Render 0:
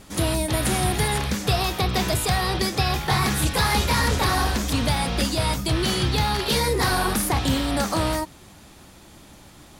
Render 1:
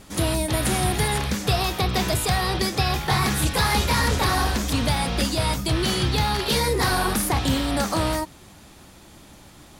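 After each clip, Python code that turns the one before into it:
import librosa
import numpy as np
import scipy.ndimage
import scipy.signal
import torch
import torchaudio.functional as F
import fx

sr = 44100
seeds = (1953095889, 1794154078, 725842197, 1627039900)

y = x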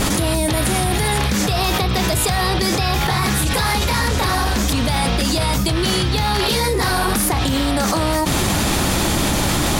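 y = fx.env_flatten(x, sr, amount_pct=100)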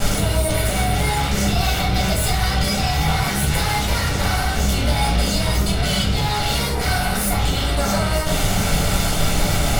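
y = fx.lower_of_two(x, sr, delay_ms=1.4)
y = fx.room_shoebox(y, sr, seeds[0], volume_m3=68.0, walls='mixed', distance_m=1.2)
y = F.gain(torch.from_numpy(y), -6.5).numpy()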